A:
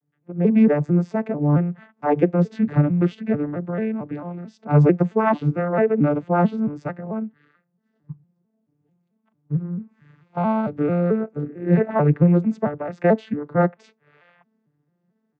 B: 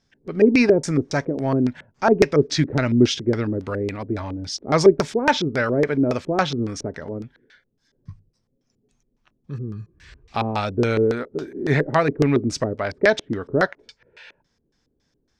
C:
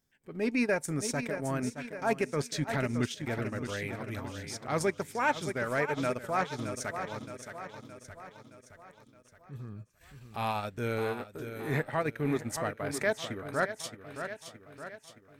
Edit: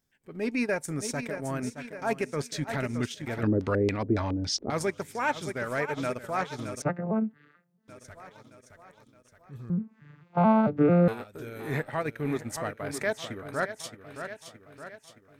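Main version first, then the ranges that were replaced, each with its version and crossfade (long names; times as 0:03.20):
C
0:03.43–0:04.70: punch in from B
0:06.82–0:07.88: punch in from A
0:09.70–0:11.08: punch in from A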